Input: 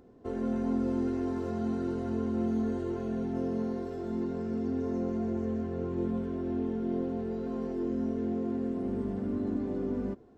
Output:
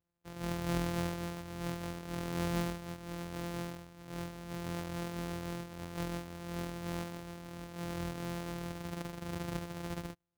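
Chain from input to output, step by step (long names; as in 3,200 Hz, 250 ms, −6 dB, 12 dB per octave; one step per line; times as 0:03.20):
samples sorted by size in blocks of 256 samples
expander for the loud parts 2.5 to 1, over −47 dBFS
level −1.5 dB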